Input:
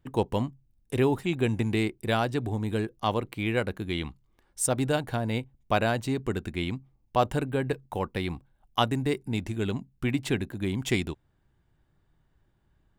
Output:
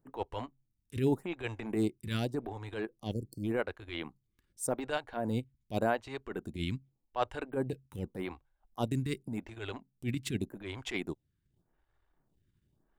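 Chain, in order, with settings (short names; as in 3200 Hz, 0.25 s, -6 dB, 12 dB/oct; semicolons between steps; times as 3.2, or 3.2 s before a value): transient shaper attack -12 dB, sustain -8 dB; spectral delete 3.13–3.44, 700–4300 Hz; photocell phaser 0.86 Hz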